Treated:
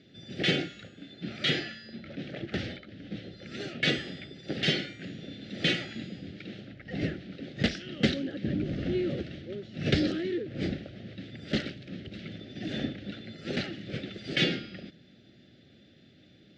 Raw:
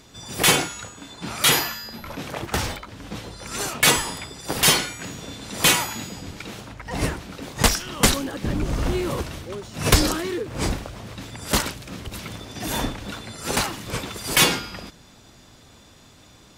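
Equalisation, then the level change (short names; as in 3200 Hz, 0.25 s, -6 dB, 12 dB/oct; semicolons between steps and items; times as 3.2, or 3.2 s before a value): Butterworth band-stop 1000 Hz, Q 0.95; speaker cabinet 160–4100 Hz, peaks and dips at 270 Hz -3 dB, 460 Hz -8 dB, 670 Hz -5 dB, 1000 Hz -5 dB, 1500 Hz -4 dB, 2400 Hz -5 dB; high shelf 2500 Hz -10 dB; 0.0 dB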